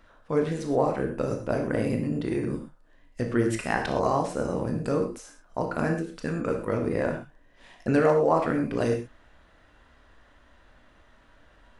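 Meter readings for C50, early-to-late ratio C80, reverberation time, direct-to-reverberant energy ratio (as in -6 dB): 7.0 dB, 10.5 dB, not exponential, 3.0 dB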